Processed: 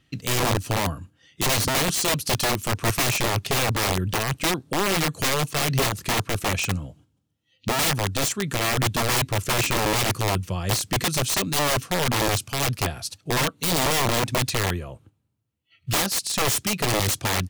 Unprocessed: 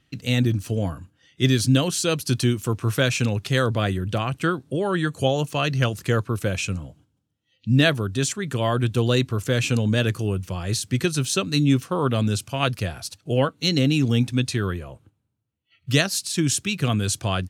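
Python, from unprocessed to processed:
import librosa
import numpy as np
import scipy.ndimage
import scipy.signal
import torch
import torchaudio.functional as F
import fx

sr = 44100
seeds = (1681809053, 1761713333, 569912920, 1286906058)

y = (np.mod(10.0 ** (18.0 / 20.0) * x + 1.0, 2.0) - 1.0) / 10.0 ** (18.0 / 20.0)
y = fx.notch(y, sr, hz=1500.0, q=19.0)
y = F.gain(torch.from_numpy(y), 1.5).numpy()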